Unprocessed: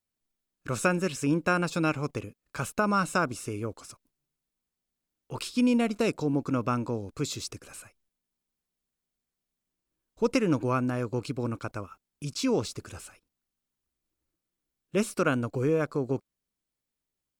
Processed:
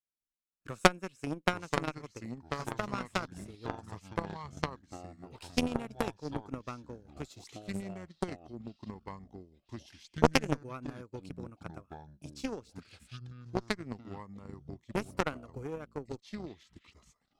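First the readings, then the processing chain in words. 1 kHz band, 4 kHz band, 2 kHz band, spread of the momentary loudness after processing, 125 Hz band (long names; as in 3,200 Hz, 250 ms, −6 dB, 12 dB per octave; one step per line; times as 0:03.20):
−3.5 dB, −1.5 dB, −4.0 dB, 18 LU, −7.0 dB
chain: delay with pitch and tempo change per echo 659 ms, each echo −4 semitones, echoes 3
transient designer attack +8 dB, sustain −8 dB
harmonic generator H 3 −11 dB, 4 −11 dB, 6 −19 dB, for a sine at −3 dBFS
level −1 dB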